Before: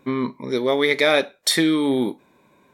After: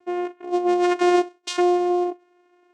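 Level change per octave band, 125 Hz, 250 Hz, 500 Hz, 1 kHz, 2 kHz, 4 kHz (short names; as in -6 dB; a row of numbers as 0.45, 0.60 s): under -25 dB, 0.0 dB, -0.5 dB, +6.0 dB, -9.5 dB, -11.0 dB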